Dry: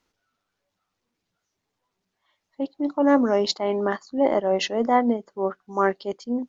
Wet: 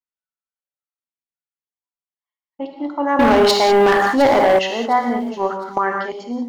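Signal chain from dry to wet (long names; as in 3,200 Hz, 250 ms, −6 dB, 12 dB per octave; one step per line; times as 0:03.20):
downward expander −46 dBFS
flat-topped bell 1,500 Hz +8 dB 2.4 octaves
reverb whose tail is shaped and stops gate 220 ms flat, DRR 3 dB
in parallel at −0.5 dB: brickwall limiter −12 dBFS, peak gain reduction 11 dB
0:03.19–0:04.59: on the sum: leveller curve on the samples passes 3
pitch vibrato 1.5 Hz 11 cents
0:05.12–0:05.78: transient designer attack +9 dB, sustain +5 dB
on a send: delay with a high-pass on its return 709 ms, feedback 33%, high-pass 4,500 Hz, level −12.5 dB
on the sum: level −7.5 dB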